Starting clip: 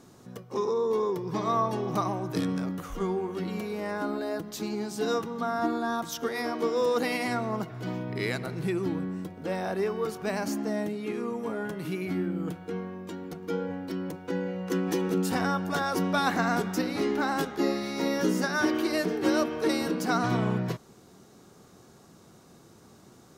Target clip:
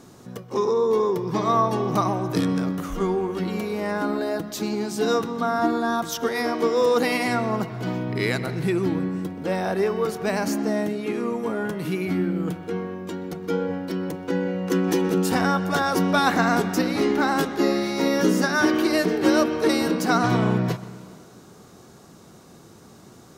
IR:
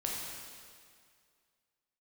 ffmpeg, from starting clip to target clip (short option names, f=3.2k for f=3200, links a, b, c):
-filter_complex "[0:a]asplit=2[a][b];[1:a]atrim=start_sample=2205,lowpass=5.6k,adelay=126[c];[b][c]afir=irnorm=-1:irlink=0,volume=-18.5dB[d];[a][d]amix=inputs=2:normalize=0,volume=6dB"